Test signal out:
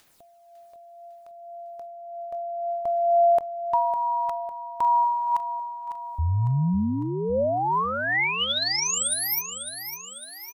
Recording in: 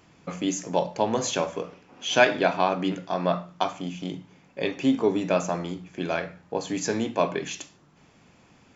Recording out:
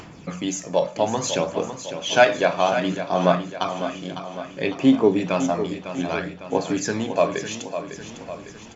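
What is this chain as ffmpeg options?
-filter_complex "[0:a]acompressor=mode=upward:threshold=0.0112:ratio=2.5,aphaser=in_gain=1:out_gain=1:delay=1.8:decay=0.42:speed=0.61:type=sinusoidal,asplit=2[s0][s1];[s1]aecho=0:1:553|1106|1659|2212|2765|3318:0.316|0.171|0.0922|0.0498|0.0269|0.0145[s2];[s0][s2]amix=inputs=2:normalize=0,volume=1.19"

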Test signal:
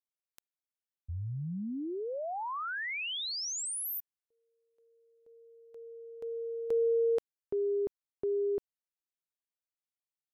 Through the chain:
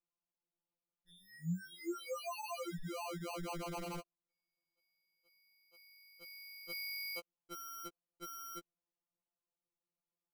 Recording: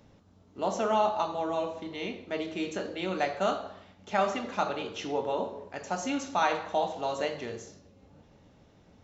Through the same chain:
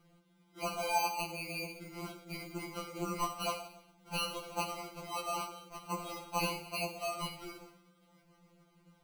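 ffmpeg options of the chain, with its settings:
-af "acrusher=samples=25:mix=1:aa=0.000001,equalizer=f=77:w=2.2:g=5,afftfilt=real='re*2.83*eq(mod(b,8),0)':imag='im*2.83*eq(mod(b,8),0)':win_size=2048:overlap=0.75,volume=0.631"

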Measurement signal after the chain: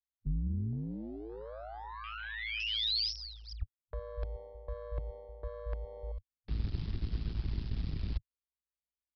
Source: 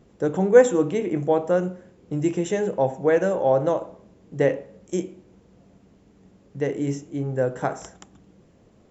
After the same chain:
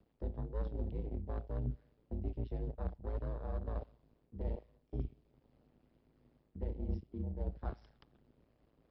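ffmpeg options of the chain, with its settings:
-filter_complex "[0:a]aeval=exprs='if(lt(val(0),0),0.251*val(0),val(0))':c=same,afwtdn=0.0562,aeval=exprs='val(0)*sin(2*PI*55*n/s)':c=same,areverse,acompressor=threshold=0.0178:ratio=6,areverse,aeval=exprs='0.106*(cos(1*acos(clip(val(0)/0.106,-1,1)))-cos(1*PI/2))+0.00119*(cos(4*acos(clip(val(0)/0.106,-1,1)))-cos(4*PI/2))':c=same,acrossover=split=150|3000[s0][s1][s2];[s1]acompressor=threshold=0.00112:ratio=2.5[s3];[s0][s3][s2]amix=inputs=3:normalize=0,aresample=11025,aresample=44100,volume=2.24"

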